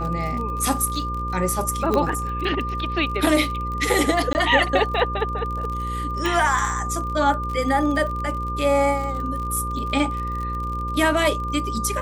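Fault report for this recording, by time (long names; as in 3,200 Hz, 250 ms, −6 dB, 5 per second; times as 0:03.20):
mains buzz 60 Hz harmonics 9 −29 dBFS
surface crackle 45 per second −29 dBFS
whistle 1,200 Hz −27 dBFS
0:01.94: click −9 dBFS
0:04.33–0:04.35: drop-out 19 ms
0:06.26: click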